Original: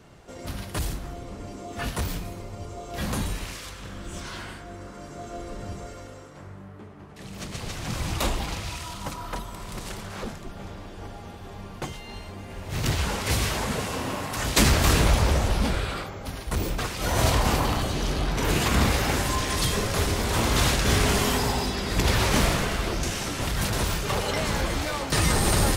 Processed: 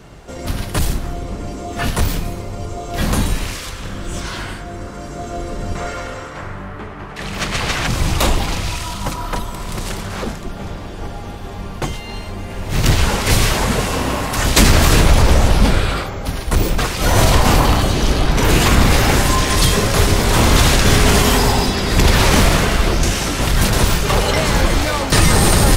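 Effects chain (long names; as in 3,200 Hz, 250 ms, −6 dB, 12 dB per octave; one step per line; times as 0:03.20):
sub-octave generator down 2 octaves, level −1 dB
0:05.75–0:07.87: parametric band 1,700 Hz +10 dB 2.9 octaves
boost into a limiter +11 dB
level −1 dB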